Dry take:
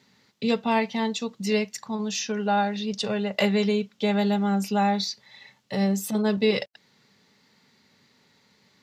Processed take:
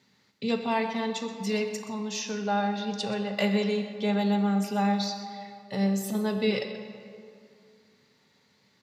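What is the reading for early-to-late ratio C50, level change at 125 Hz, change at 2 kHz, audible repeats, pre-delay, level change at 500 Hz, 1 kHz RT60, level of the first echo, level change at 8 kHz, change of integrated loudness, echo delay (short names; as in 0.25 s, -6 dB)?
6.5 dB, -2.0 dB, -3.5 dB, 1, 12 ms, -3.5 dB, 2.3 s, -14.5 dB, -4.0 dB, -3.0 dB, 0.125 s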